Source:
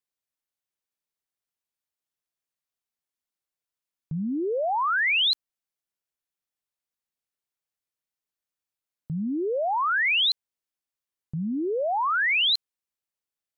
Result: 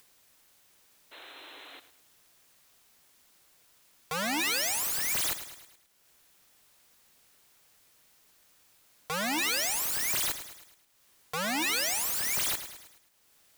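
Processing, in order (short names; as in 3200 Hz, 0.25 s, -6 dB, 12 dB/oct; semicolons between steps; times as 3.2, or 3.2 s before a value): wrapped overs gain 33.5 dB; upward compressor, threshold -54 dBFS; painted sound noise, 1.11–1.8, 260–4200 Hz -57 dBFS; lo-fi delay 0.106 s, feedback 55%, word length 11-bit, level -11.5 dB; gain +8 dB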